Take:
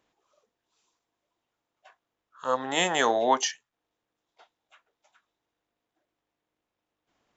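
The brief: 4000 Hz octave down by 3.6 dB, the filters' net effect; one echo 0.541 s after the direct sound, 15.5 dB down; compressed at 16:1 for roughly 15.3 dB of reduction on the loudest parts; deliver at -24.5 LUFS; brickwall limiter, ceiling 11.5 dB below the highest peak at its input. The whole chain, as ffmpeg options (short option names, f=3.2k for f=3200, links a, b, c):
-af "equalizer=f=4k:t=o:g=-5,acompressor=threshold=-32dB:ratio=16,alimiter=level_in=9.5dB:limit=-24dB:level=0:latency=1,volume=-9.5dB,aecho=1:1:541:0.168,volume=22dB"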